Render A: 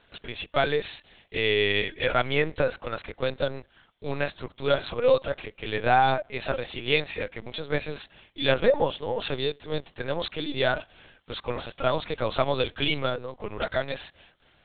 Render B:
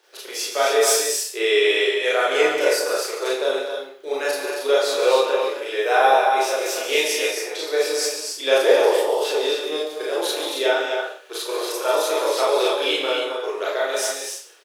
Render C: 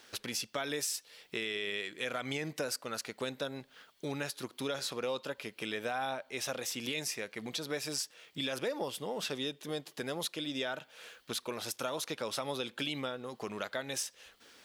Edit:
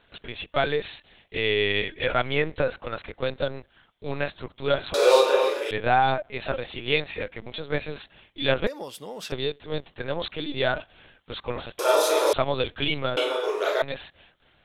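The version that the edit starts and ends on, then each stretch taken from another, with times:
A
4.94–5.71 from B
8.67–9.32 from C
11.79–12.33 from B
13.17–13.82 from B

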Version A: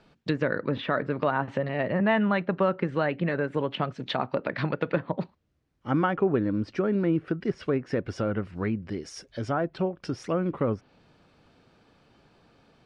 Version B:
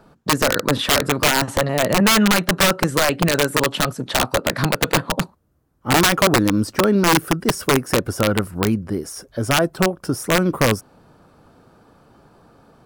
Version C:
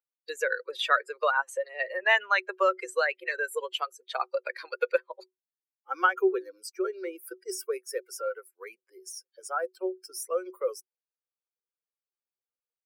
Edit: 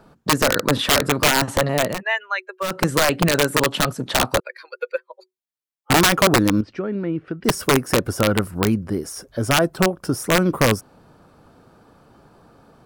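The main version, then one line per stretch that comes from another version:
B
1.91–2.73 from C, crossfade 0.24 s
4.4–5.9 from C
6.61–7.44 from A

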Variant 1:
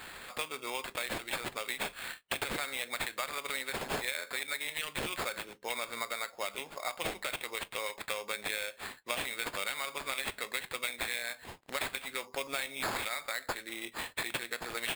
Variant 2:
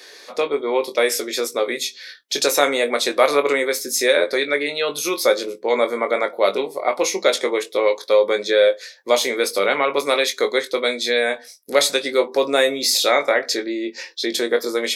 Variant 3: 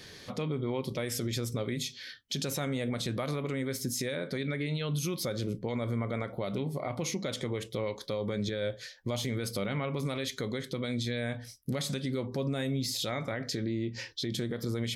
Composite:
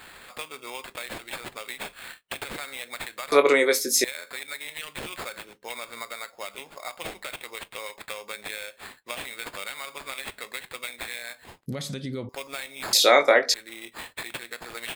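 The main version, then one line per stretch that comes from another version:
1
3.32–4.04 from 2
11.66–12.29 from 3
12.93–13.54 from 2

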